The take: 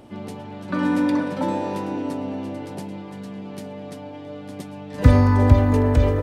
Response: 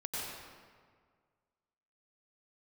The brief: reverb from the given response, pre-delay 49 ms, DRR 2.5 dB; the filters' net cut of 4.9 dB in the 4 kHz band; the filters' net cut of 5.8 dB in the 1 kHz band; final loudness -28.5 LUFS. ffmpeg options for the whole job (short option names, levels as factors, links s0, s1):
-filter_complex "[0:a]equalizer=f=1000:t=o:g=-6.5,equalizer=f=4000:t=o:g=-6,asplit=2[s0][s1];[1:a]atrim=start_sample=2205,adelay=49[s2];[s1][s2]afir=irnorm=-1:irlink=0,volume=0.531[s3];[s0][s3]amix=inputs=2:normalize=0,volume=0.355"